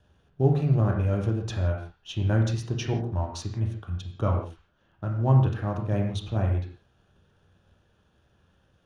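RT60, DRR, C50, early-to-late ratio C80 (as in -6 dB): not exponential, 1.0 dB, 5.5 dB, 8.0 dB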